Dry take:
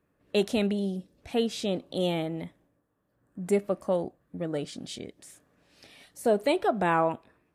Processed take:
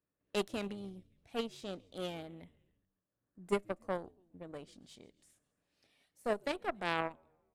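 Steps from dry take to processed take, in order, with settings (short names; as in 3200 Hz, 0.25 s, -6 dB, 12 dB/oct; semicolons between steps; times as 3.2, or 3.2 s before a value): frequency-shifting echo 0.138 s, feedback 57%, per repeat -89 Hz, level -21 dB; added harmonics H 3 -11 dB, 4 -27 dB, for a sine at -12 dBFS; vocal rider within 3 dB 2 s; gain -4 dB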